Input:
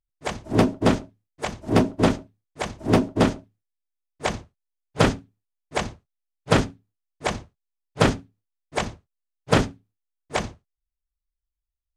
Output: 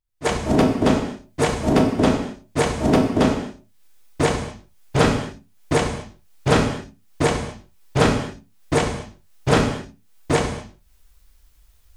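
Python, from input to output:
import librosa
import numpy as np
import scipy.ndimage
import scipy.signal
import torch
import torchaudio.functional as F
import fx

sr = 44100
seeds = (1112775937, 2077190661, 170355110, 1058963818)

y = fx.recorder_agc(x, sr, target_db=-12.5, rise_db_per_s=54.0, max_gain_db=30)
y = fx.rev_gated(y, sr, seeds[0], gate_ms=280, shape='falling', drr_db=3.0)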